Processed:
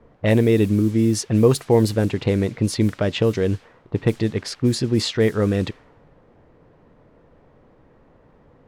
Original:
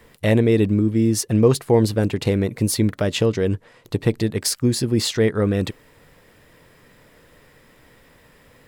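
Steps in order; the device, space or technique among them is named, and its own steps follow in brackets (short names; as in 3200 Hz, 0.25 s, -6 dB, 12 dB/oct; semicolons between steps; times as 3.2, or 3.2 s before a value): cassette deck with a dynamic noise filter (white noise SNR 25 dB; low-pass opened by the level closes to 690 Hz, open at -13 dBFS)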